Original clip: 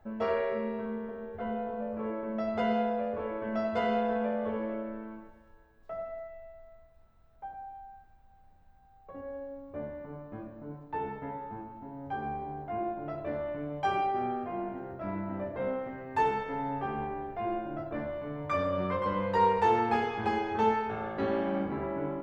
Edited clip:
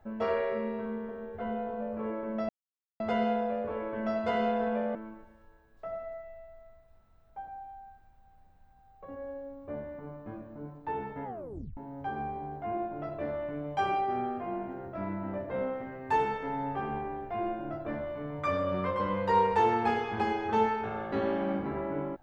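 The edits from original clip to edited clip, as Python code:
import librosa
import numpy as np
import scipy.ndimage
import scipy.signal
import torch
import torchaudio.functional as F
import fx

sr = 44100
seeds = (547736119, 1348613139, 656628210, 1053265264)

y = fx.edit(x, sr, fx.insert_silence(at_s=2.49, length_s=0.51),
    fx.cut(start_s=4.44, length_s=0.57),
    fx.tape_stop(start_s=11.3, length_s=0.53), tone=tone)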